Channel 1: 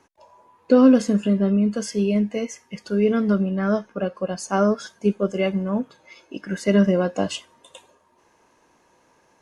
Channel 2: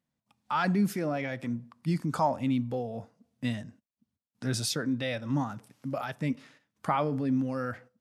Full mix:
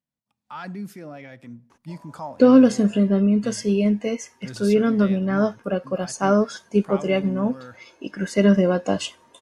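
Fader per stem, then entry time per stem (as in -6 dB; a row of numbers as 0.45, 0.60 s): +1.0, -7.5 dB; 1.70, 0.00 s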